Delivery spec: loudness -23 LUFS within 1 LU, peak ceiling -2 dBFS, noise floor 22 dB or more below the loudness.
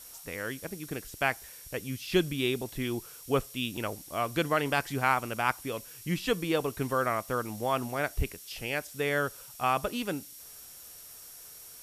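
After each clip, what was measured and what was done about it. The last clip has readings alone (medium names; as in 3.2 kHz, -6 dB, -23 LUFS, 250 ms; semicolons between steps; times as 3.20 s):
steady tone 5.6 kHz; tone level -57 dBFS; noise floor -49 dBFS; noise floor target -54 dBFS; loudness -31.5 LUFS; peak level -11.5 dBFS; loudness target -23.0 LUFS
-> band-stop 5.6 kHz, Q 30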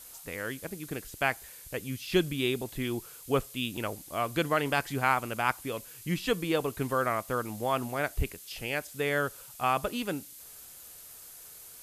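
steady tone not found; noise floor -49 dBFS; noise floor target -54 dBFS
-> noise print and reduce 6 dB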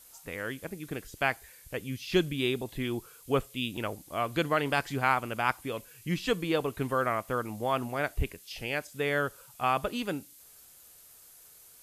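noise floor -55 dBFS; loudness -31.5 LUFS; peak level -11.5 dBFS; loudness target -23.0 LUFS
-> trim +8.5 dB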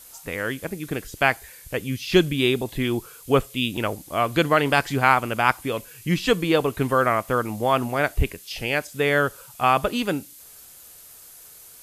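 loudness -23.0 LUFS; peak level -3.0 dBFS; noise floor -47 dBFS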